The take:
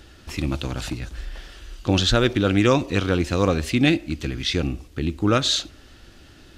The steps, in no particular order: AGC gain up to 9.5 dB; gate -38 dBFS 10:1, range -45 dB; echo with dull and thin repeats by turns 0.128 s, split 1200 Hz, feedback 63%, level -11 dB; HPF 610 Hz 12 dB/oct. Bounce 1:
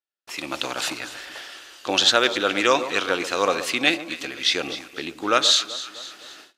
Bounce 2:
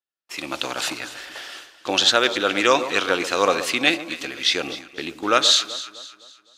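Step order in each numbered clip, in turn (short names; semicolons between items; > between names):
echo with dull and thin repeats by turns > AGC > gate > HPF; HPF > AGC > gate > echo with dull and thin repeats by turns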